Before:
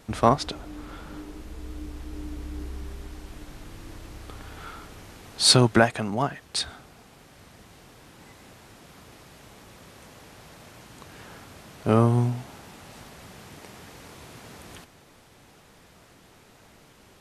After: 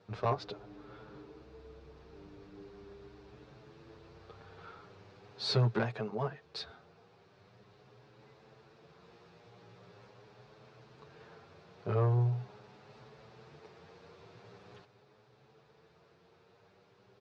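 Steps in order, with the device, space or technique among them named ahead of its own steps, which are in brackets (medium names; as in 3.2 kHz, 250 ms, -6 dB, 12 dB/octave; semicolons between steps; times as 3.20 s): 8.99–10.11 s: doubling 17 ms -4 dB; barber-pole flanger into a guitar amplifier (endless flanger 8.1 ms +0.42 Hz; saturation -16.5 dBFS, distortion -12 dB; cabinet simulation 110–4600 Hz, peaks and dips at 120 Hz +7 dB, 270 Hz -10 dB, 430 Hz +9 dB, 2 kHz -5 dB, 3.1 kHz -6 dB); trim -7 dB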